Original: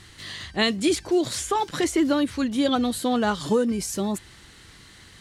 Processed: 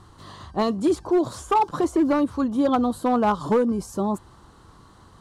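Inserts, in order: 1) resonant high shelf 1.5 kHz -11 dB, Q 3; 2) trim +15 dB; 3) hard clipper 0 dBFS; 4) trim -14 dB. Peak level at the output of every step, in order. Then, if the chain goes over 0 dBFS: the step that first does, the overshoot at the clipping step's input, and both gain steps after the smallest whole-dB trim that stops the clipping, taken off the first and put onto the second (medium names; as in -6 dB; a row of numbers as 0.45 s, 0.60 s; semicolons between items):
-10.0 dBFS, +5.0 dBFS, 0.0 dBFS, -14.0 dBFS; step 2, 5.0 dB; step 2 +10 dB, step 4 -9 dB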